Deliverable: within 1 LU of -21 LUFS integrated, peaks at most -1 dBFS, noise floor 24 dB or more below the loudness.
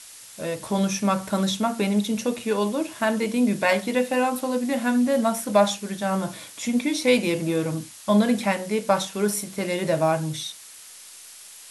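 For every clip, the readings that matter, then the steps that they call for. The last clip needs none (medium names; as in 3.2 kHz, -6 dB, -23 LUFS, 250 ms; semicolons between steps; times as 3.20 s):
noise floor -45 dBFS; noise floor target -48 dBFS; loudness -24.0 LUFS; peak level -6.0 dBFS; loudness target -21.0 LUFS
-> noise print and reduce 6 dB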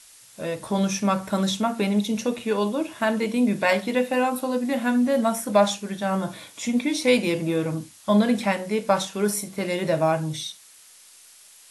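noise floor -51 dBFS; loudness -24.0 LUFS; peak level -6.5 dBFS; loudness target -21.0 LUFS
-> trim +3 dB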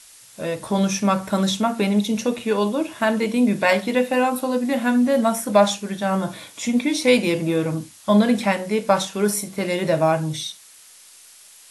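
loudness -21.0 LUFS; peak level -3.5 dBFS; noise floor -48 dBFS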